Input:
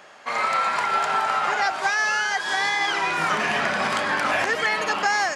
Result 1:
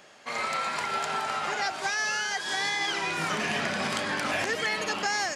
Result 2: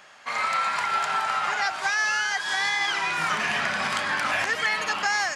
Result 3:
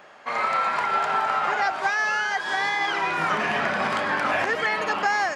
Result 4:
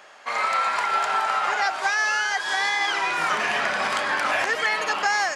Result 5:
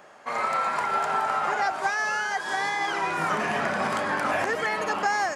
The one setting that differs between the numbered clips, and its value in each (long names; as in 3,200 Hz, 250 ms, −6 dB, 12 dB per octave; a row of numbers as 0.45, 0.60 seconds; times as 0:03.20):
parametric band, centre frequency: 1,100, 410, 9,500, 150, 3,600 Hertz